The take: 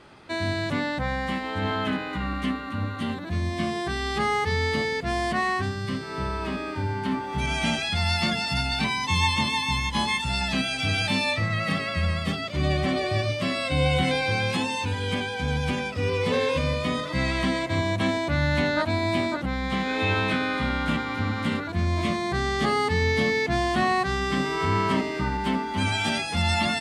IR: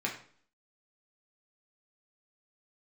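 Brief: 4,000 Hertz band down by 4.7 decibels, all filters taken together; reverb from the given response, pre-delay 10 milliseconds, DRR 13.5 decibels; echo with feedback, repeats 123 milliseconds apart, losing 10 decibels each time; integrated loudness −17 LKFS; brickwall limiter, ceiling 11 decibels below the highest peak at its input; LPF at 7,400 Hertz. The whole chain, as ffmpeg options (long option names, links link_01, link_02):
-filter_complex "[0:a]lowpass=7400,equalizer=frequency=4000:width_type=o:gain=-5.5,alimiter=limit=-22dB:level=0:latency=1,aecho=1:1:123|246|369|492:0.316|0.101|0.0324|0.0104,asplit=2[link_01][link_02];[1:a]atrim=start_sample=2205,adelay=10[link_03];[link_02][link_03]afir=irnorm=-1:irlink=0,volume=-19dB[link_04];[link_01][link_04]amix=inputs=2:normalize=0,volume=13dB"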